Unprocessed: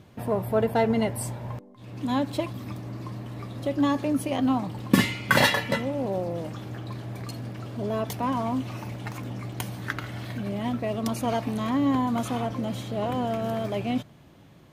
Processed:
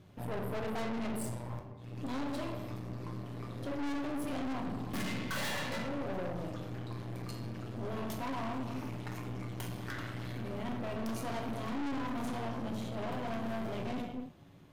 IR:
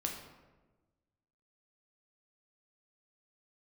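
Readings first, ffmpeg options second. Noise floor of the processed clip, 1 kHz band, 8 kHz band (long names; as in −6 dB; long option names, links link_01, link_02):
−48 dBFS, −10.5 dB, −10.0 dB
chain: -filter_complex "[1:a]atrim=start_sample=2205,afade=type=out:start_time=0.38:duration=0.01,atrim=end_sample=17199[link_01];[0:a][link_01]afir=irnorm=-1:irlink=0,aeval=exprs='(tanh(35.5*val(0)+0.7)-tanh(0.7))/35.5':channel_layout=same,volume=-4dB"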